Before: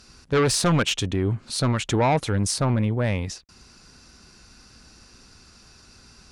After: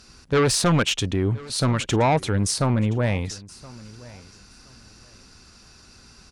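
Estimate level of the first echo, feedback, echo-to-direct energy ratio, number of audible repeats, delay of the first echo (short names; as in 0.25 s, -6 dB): -21.0 dB, 20%, -21.0 dB, 2, 1.022 s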